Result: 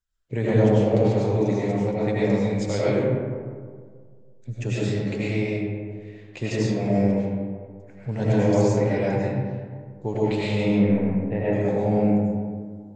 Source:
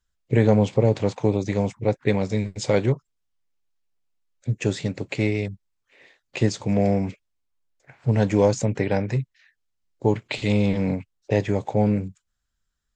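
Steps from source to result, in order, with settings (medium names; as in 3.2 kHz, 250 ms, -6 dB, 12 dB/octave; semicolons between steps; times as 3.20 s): 10.65–11.53 s: low-pass 2.5 kHz 24 dB/octave; algorithmic reverb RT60 1.9 s, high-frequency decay 0.4×, pre-delay 60 ms, DRR -8.5 dB; trim -9 dB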